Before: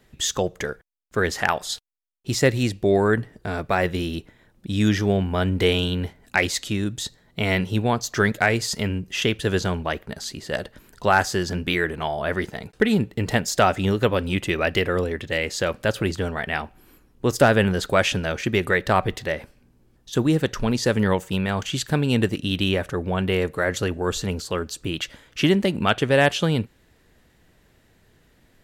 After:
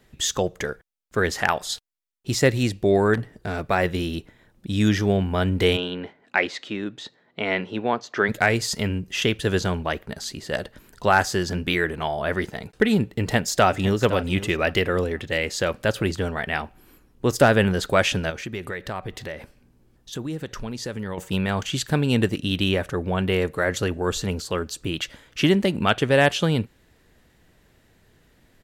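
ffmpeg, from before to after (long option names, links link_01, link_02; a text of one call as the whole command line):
ffmpeg -i in.wav -filter_complex "[0:a]asettb=1/sr,asplit=3[link_01][link_02][link_03];[link_01]atrim=end=3.144[link_04];[link_02]atrim=start=3.14:end=3.69,asetpts=PTS-STARTPTS,afade=type=in:duration=0.004:curve=qsin,afade=type=out:start_time=0.546:duration=0.004:curve=qsin,asoftclip=type=hard:threshold=-21dB[link_05];[link_03]atrim=start=3.686[link_06];[link_04][link_05]acrossfade=duration=0.004:curve1=hsin:curve2=qsin[link_07];[link_07][link_06]acrossfade=duration=0.004:curve1=qsin:curve2=hsin,asplit=3[link_08][link_09][link_10];[link_08]afade=type=out:start_time=5.76:duration=0.02[link_11];[link_09]highpass=270,lowpass=2900,afade=type=in:start_time=5.76:duration=0.02,afade=type=out:start_time=8.28:duration=0.02[link_12];[link_10]afade=type=in:start_time=8.28:duration=0.02[link_13];[link_11][link_12][link_13]amix=inputs=3:normalize=0,asplit=2[link_14][link_15];[link_15]afade=type=in:start_time=13.2:duration=0.01,afade=type=out:start_time=14:duration=0.01,aecho=0:1:510|1020|1530:0.188365|0.0470912|0.0117728[link_16];[link_14][link_16]amix=inputs=2:normalize=0,asettb=1/sr,asplit=3[link_17][link_18][link_19];[link_17]atrim=end=18.304[link_20];[link_18]atrim=start=18.3:end=21.18,asetpts=PTS-STARTPTS,afade=type=in:duration=0.004:curve=qsin,afade=type=out:start_time=2.876:duration=0.004:curve=qsin,acompressor=threshold=-32dB:ratio=2.5:attack=3.2:release=140:knee=1:detection=peak[link_21];[link_19]atrim=start=21.176[link_22];[link_20][link_21]acrossfade=duration=0.004:curve1=hsin:curve2=qsin[link_23];[link_23][link_22]acrossfade=duration=0.004:curve1=qsin:curve2=hsin" out.wav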